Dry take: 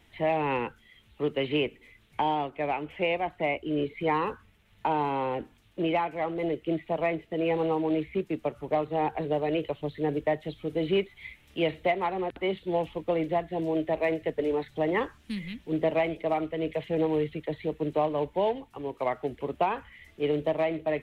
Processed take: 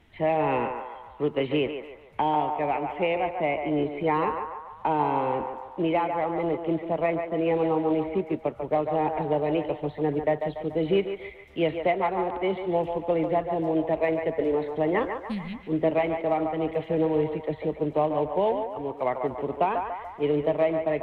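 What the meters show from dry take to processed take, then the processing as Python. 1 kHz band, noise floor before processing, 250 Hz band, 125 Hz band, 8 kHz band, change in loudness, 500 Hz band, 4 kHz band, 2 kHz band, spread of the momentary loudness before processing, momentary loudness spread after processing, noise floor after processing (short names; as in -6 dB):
+3.5 dB, -60 dBFS, +2.5 dB, +2.5 dB, n/a, +3.0 dB, +3.0 dB, -2.0 dB, 0.0 dB, 6 LU, 6 LU, -46 dBFS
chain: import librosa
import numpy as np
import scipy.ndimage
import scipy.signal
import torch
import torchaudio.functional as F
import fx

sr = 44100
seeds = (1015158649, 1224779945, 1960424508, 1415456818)

p1 = fx.high_shelf(x, sr, hz=3300.0, db=-11.0)
p2 = p1 + fx.echo_banded(p1, sr, ms=144, feedback_pct=57, hz=1000.0, wet_db=-4.5, dry=0)
y = p2 * librosa.db_to_amplitude(2.5)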